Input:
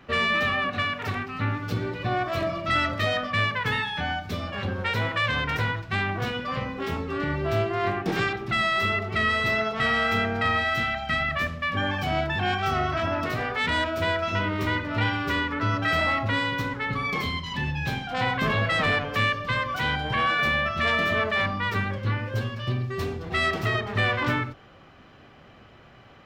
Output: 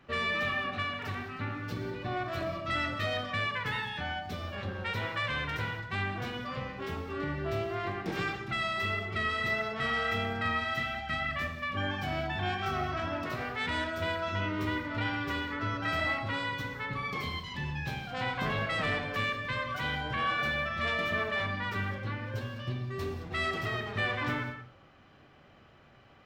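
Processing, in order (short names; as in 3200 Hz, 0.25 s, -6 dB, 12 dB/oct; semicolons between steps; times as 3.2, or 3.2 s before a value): non-linear reverb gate 0.22 s flat, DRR 6.5 dB; gain -8 dB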